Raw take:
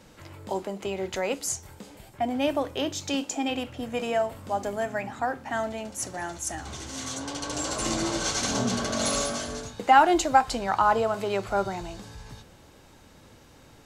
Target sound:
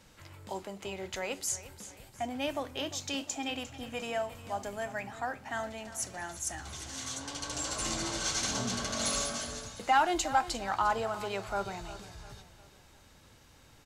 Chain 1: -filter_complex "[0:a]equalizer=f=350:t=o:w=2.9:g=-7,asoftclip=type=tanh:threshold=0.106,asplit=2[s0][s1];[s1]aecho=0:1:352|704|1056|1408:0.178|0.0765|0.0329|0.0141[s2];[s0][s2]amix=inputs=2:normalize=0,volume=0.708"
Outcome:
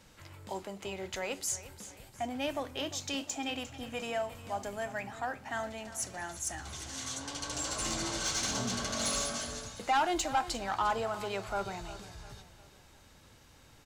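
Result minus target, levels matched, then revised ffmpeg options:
saturation: distortion +9 dB
-filter_complex "[0:a]equalizer=f=350:t=o:w=2.9:g=-7,asoftclip=type=tanh:threshold=0.251,asplit=2[s0][s1];[s1]aecho=0:1:352|704|1056|1408:0.178|0.0765|0.0329|0.0141[s2];[s0][s2]amix=inputs=2:normalize=0,volume=0.708"

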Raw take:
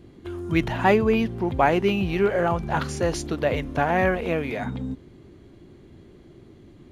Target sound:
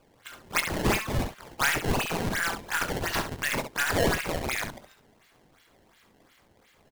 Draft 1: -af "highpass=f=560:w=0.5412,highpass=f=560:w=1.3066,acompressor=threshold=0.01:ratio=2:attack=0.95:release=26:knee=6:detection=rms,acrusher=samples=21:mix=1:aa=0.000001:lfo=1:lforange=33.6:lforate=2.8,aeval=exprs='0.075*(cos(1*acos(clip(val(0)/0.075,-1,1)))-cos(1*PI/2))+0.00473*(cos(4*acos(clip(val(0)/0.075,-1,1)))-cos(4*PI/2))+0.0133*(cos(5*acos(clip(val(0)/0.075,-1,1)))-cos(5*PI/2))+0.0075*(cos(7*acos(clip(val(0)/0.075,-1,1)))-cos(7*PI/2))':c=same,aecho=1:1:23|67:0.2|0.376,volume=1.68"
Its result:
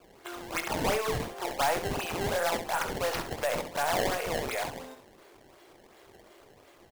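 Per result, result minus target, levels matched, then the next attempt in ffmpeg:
compression: peak gain reduction +14.5 dB; 500 Hz band +4.5 dB
-af "highpass=f=560:w=0.5412,highpass=f=560:w=1.3066,acrusher=samples=21:mix=1:aa=0.000001:lfo=1:lforange=33.6:lforate=2.8,aeval=exprs='0.075*(cos(1*acos(clip(val(0)/0.075,-1,1)))-cos(1*PI/2))+0.00473*(cos(4*acos(clip(val(0)/0.075,-1,1)))-cos(4*PI/2))+0.0133*(cos(5*acos(clip(val(0)/0.075,-1,1)))-cos(5*PI/2))+0.0075*(cos(7*acos(clip(val(0)/0.075,-1,1)))-cos(7*PI/2))':c=same,aecho=1:1:23|67:0.2|0.376,volume=1.68"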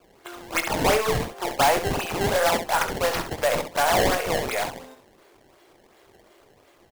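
500 Hz band +4.5 dB
-af "highpass=f=1500:w=0.5412,highpass=f=1500:w=1.3066,acrusher=samples=21:mix=1:aa=0.000001:lfo=1:lforange=33.6:lforate=2.8,aeval=exprs='0.075*(cos(1*acos(clip(val(0)/0.075,-1,1)))-cos(1*PI/2))+0.00473*(cos(4*acos(clip(val(0)/0.075,-1,1)))-cos(4*PI/2))+0.0133*(cos(5*acos(clip(val(0)/0.075,-1,1)))-cos(5*PI/2))+0.0075*(cos(7*acos(clip(val(0)/0.075,-1,1)))-cos(7*PI/2))':c=same,aecho=1:1:23|67:0.2|0.376,volume=1.68"

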